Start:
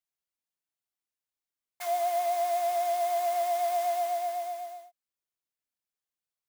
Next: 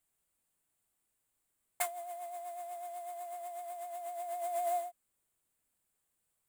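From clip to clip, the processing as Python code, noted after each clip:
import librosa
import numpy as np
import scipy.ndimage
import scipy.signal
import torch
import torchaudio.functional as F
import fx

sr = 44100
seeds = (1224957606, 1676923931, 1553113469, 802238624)

y = fx.tilt_eq(x, sr, slope=-1.5)
y = fx.over_compress(y, sr, threshold_db=-40.0, ratio=-1.0)
y = fx.high_shelf_res(y, sr, hz=6800.0, db=6.0, q=3.0)
y = y * 10.0 ** (-1.0 / 20.0)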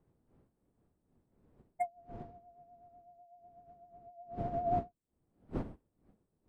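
y = fx.spec_expand(x, sr, power=2.8)
y = fx.dmg_wind(y, sr, seeds[0], corner_hz=300.0, level_db=-46.0)
y = fx.upward_expand(y, sr, threshold_db=-46.0, expansion=2.5)
y = y * 10.0 ** (3.0 / 20.0)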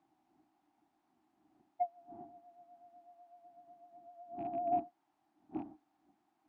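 y = fx.rattle_buzz(x, sr, strikes_db=-39.0, level_db=-33.0)
y = fx.dmg_noise_colour(y, sr, seeds[1], colour='white', level_db=-64.0)
y = fx.double_bandpass(y, sr, hz=490.0, octaves=1.3)
y = y * 10.0 ** (5.0 / 20.0)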